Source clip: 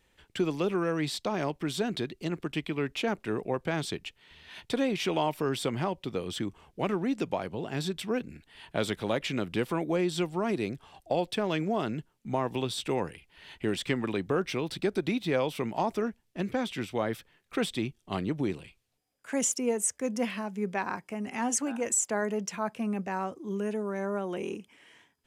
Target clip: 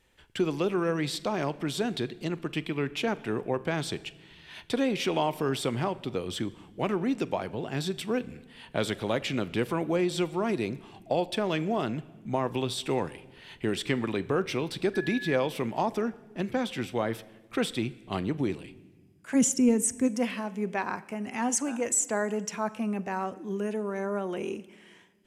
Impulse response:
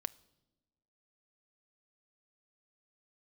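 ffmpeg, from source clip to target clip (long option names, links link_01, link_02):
-filter_complex "[0:a]asettb=1/sr,asplit=3[link_01][link_02][link_03];[link_01]atrim=end=14.944[link_04];[link_02]atrim=start=14.94:end=15.36,asetpts=PTS-STARTPTS,afade=type=in:duration=0.004:curve=qsin,afade=type=out:start_time=0.416:duration=0.004:curve=qsin,aeval=exprs='val(0)+0.0141*sin(2*PI*1700*n/s)':channel_layout=same[link_05];[link_03]atrim=start=15.356[link_06];[link_04][link_05]acrossfade=duration=0.004:curve1=hsin:curve2=qsin[link_07];[link_07][link_06]acrossfade=duration=0.004:curve1=qsin:curve2=hsin,asplit=3[link_08][link_09][link_10];[link_08]afade=type=out:start_time=19.34:duration=0.02[link_11];[link_09]asubboost=boost=6:cutoff=240,afade=type=in:start_time=19.34:duration=0.02,afade=type=out:start_time=20.07:duration=0.02[link_12];[link_10]afade=type=in:start_time=20.07:duration=0.02[link_13];[link_11][link_12][link_13]amix=inputs=3:normalize=0[link_14];[1:a]atrim=start_sample=2205,asetrate=26460,aresample=44100[link_15];[link_14][link_15]afir=irnorm=-1:irlink=0"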